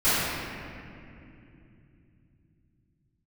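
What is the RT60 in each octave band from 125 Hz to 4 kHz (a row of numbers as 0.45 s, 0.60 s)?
5.6 s, 4.5 s, 3.2 s, 2.3 s, 2.5 s, 1.7 s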